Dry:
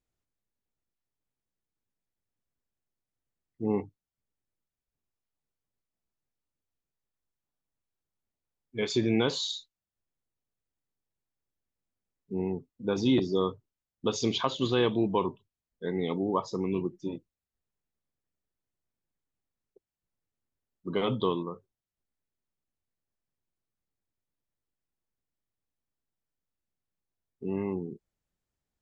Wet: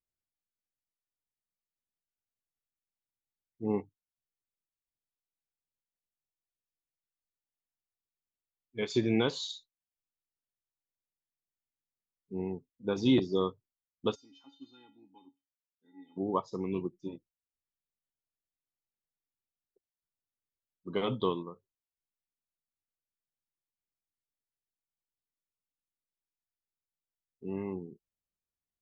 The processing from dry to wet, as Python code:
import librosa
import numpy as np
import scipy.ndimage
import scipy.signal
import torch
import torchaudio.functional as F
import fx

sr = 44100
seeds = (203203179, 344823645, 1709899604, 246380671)

y = fx.comb_fb(x, sr, f0_hz=280.0, decay_s=0.23, harmonics='odd', damping=0.0, mix_pct=100, at=(14.14, 16.16), fade=0.02)
y = fx.upward_expand(y, sr, threshold_db=-47.0, expansion=1.5)